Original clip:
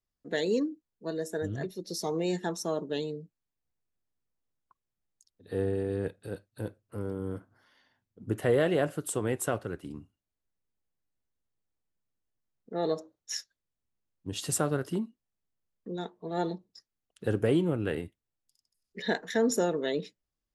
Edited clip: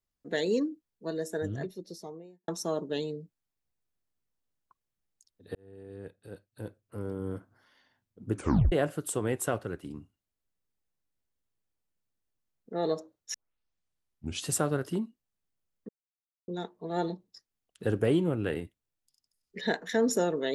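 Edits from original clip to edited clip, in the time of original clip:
1.41–2.48 s: studio fade out
5.55–7.29 s: fade in
8.34 s: tape stop 0.38 s
13.34 s: tape start 1.13 s
15.89 s: insert silence 0.59 s

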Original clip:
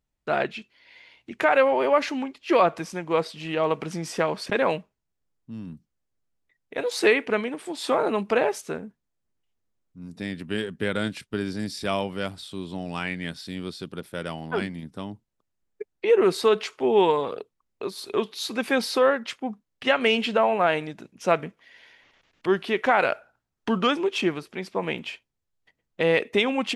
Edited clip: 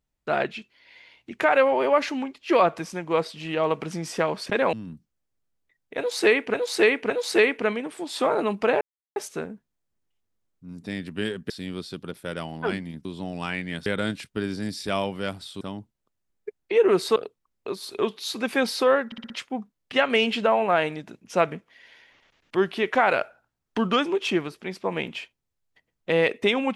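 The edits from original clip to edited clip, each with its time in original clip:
4.73–5.53 s: delete
6.78–7.34 s: loop, 3 plays
8.49 s: insert silence 0.35 s
10.83–12.58 s: swap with 13.39–14.94 s
16.49–17.31 s: delete
19.21 s: stutter 0.06 s, 5 plays

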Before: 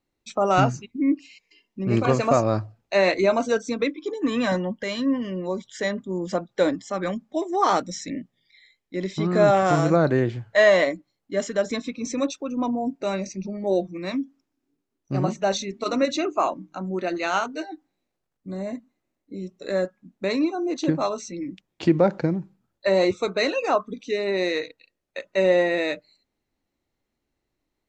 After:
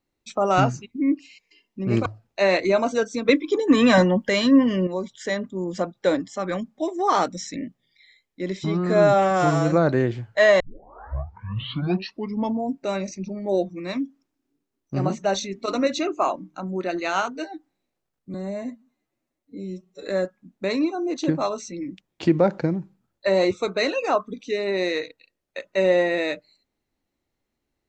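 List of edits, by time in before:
2.06–2.60 s: delete
3.83–5.41 s: gain +7.5 dB
9.18–9.90 s: stretch 1.5×
10.78 s: tape start 2.06 s
18.52–19.68 s: stretch 1.5×

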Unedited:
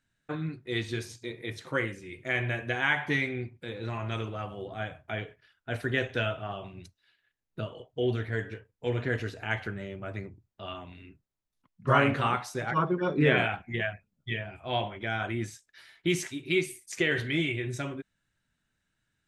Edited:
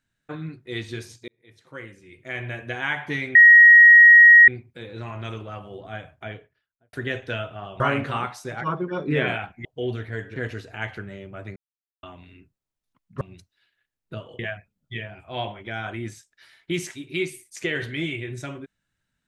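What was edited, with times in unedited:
1.28–2.73 s: fade in
3.35 s: add tone 1.89 kHz -6.5 dBFS 1.13 s
5.01–5.80 s: studio fade out
6.67–7.85 s: swap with 11.90–13.75 s
8.56–9.05 s: delete
10.25–10.72 s: mute

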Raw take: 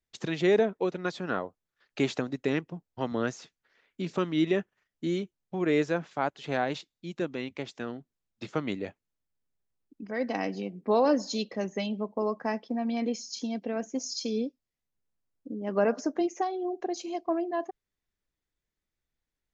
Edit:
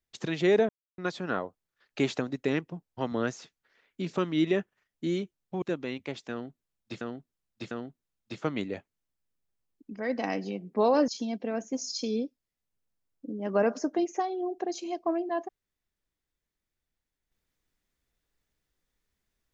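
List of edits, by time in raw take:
0.69–0.98 s: mute
5.62–7.13 s: delete
7.82–8.52 s: loop, 3 plays
11.19–13.30 s: delete

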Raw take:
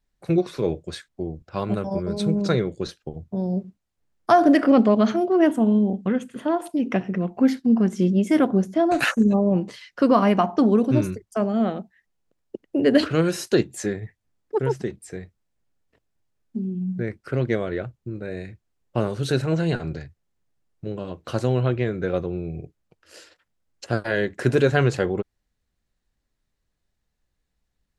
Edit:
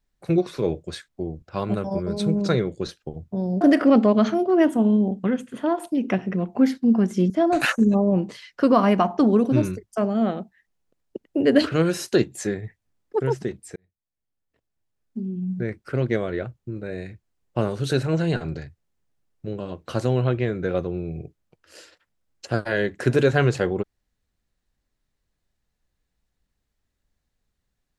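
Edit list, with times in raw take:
3.61–4.43 s: delete
8.12–8.69 s: delete
15.15–16.96 s: fade in

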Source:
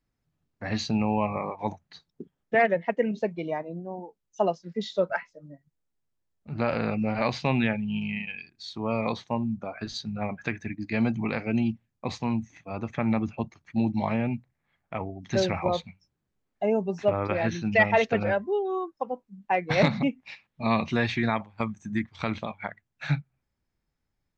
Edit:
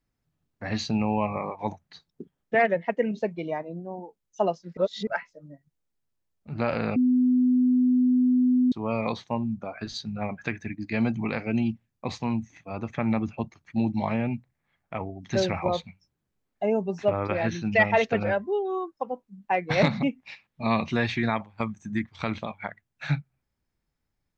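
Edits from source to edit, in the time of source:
4.77–5.07 s: reverse
6.96–8.72 s: bleep 251 Hz -17.5 dBFS

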